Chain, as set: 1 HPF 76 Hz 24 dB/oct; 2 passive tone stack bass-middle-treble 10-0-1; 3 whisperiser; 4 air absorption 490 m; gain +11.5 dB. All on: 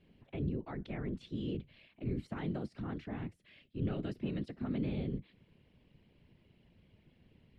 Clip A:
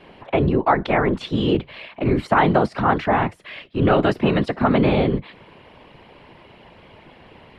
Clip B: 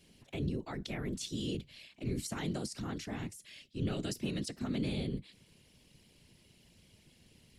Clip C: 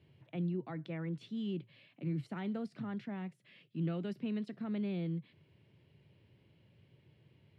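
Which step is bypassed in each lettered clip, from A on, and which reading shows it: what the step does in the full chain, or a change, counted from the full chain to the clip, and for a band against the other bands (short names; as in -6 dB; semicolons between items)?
2, 1 kHz band +9.0 dB; 4, 4 kHz band +10.5 dB; 3, crest factor change -2.5 dB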